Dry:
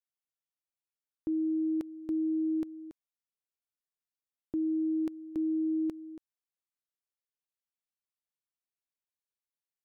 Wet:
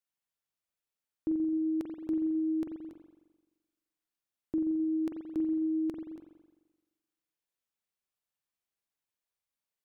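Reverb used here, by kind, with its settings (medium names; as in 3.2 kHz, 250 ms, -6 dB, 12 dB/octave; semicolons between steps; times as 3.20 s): spring tank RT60 1.2 s, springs 43 ms, chirp 70 ms, DRR 2.5 dB; trim +1.5 dB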